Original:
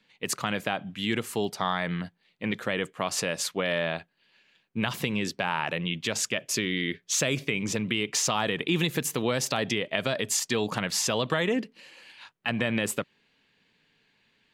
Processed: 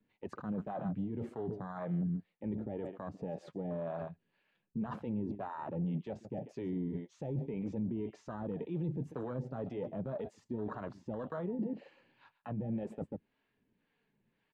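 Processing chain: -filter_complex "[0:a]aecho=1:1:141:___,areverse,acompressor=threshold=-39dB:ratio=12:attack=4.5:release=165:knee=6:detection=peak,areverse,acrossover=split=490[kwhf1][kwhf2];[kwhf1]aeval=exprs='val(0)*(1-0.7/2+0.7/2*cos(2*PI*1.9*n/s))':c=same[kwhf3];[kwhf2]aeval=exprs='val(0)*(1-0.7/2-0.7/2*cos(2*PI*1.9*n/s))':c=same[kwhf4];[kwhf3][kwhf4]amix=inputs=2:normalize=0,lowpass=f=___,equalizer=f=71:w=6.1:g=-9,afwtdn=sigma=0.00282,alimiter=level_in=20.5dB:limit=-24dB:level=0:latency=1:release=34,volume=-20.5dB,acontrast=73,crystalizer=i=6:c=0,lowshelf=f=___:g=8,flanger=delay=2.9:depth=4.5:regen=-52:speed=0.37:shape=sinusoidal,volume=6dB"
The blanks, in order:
0.119, 1100, 440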